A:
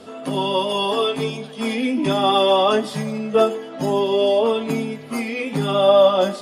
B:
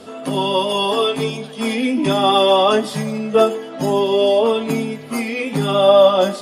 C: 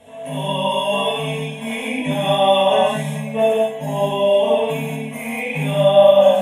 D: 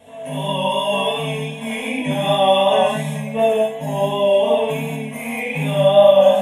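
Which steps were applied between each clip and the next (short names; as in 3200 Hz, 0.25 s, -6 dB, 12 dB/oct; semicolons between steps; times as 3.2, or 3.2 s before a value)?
high shelf 8400 Hz +4.5 dB; gain +2.5 dB
fixed phaser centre 1300 Hz, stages 6; non-linear reverb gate 0.26 s flat, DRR -7.5 dB; gain -6.5 dB
vibrato 2.7 Hz 23 cents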